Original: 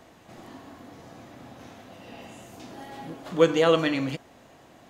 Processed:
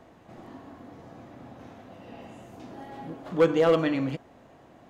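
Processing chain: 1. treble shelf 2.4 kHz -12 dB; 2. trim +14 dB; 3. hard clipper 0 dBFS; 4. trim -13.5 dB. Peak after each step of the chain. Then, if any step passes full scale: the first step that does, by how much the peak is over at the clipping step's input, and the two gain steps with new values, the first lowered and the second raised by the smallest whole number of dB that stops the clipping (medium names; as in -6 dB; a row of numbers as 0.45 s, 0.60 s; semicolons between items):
-8.0 dBFS, +6.0 dBFS, 0.0 dBFS, -13.5 dBFS; step 2, 6.0 dB; step 2 +8 dB, step 4 -7.5 dB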